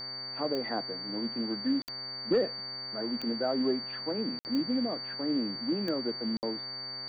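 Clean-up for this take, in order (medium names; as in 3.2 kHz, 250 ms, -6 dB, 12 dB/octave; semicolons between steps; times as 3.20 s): de-click; de-hum 129.9 Hz, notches 17; band-stop 4.6 kHz, Q 30; interpolate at 1.82/4.39/6.37 s, 59 ms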